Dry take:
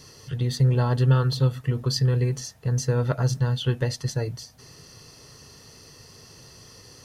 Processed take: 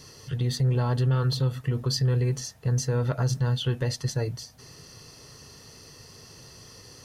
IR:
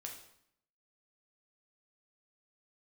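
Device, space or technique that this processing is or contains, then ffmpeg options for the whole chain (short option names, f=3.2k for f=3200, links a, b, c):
soft clipper into limiter: -af "asoftclip=type=tanh:threshold=-11dB,alimiter=limit=-18dB:level=0:latency=1:release=49"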